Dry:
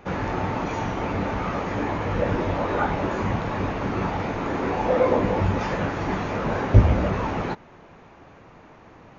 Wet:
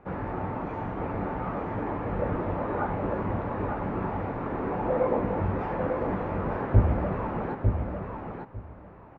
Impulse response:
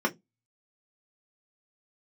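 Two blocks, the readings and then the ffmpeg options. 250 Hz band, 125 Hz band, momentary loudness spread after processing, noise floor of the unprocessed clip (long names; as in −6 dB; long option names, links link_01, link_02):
−4.5 dB, −4.5 dB, 9 LU, −49 dBFS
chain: -af "lowpass=1500,aecho=1:1:900|1800|2700:0.562|0.0956|0.0163,volume=-5.5dB"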